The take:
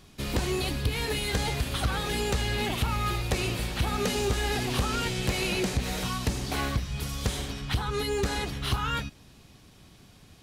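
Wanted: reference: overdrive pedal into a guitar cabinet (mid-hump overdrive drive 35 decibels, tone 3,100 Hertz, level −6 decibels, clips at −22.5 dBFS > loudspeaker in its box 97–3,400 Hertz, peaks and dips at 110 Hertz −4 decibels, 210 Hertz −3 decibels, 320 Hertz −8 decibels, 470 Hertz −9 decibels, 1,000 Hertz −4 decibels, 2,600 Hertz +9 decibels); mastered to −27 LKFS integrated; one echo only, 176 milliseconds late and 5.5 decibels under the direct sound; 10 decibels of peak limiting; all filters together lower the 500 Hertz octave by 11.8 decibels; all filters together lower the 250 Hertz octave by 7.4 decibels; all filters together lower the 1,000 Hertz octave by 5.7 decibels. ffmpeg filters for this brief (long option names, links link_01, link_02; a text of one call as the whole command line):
ffmpeg -i in.wav -filter_complex "[0:a]equalizer=frequency=250:width_type=o:gain=-3.5,equalizer=frequency=500:width_type=o:gain=-6,equalizer=frequency=1000:width_type=o:gain=-4,alimiter=level_in=2.5dB:limit=-24dB:level=0:latency=1,volume=-2.5dB,aecho=1:1:176:0.531,asplit=2[link_01][link_02];[link_02]highpass=frequency=720:poles=1,volume=35dB,asoftclip=type=tanh:threshold=-22.5dB[link_03];[link_01][link_03]amix=inputs=2:normalize=0,lowpass=frequency=3100:poles=1,volume=-6dB,highpass=97,equalizer=frequency=110:width_type=q:width=4:gain=-4,equalizer=frequency=210:width_type=q:width=4:gain=-3,equalizer=frequency=320:width_type=q:width=4:gain=-8,equalizer=frequency=470:width_type=q:width=4:gain=-9,equalizer=frequency=1000:width_type=q:width=4:gain=-4,equalizer=frequency=2600:width_type=q:width=4:gain=9,lowpass=frequency=3400:width=0.5412,lowpass=frequency=3400:width=1.3066,volume=0.5dB" out.wav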